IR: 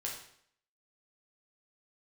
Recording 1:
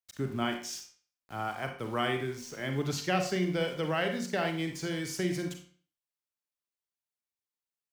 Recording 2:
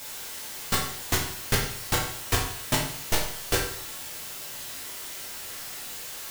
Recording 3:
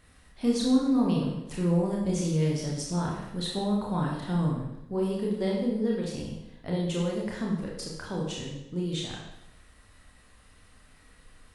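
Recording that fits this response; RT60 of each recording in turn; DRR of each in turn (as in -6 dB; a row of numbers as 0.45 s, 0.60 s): 2; 0.45 s, 0.65 s, 0.85 s; 4.0 dB, -3.0 dB, -3.0 dB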